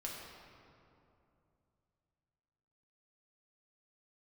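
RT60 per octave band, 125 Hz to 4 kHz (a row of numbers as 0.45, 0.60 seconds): 3.7, 3.2, 2.9, 2.6, 2.0, 1.5 seconds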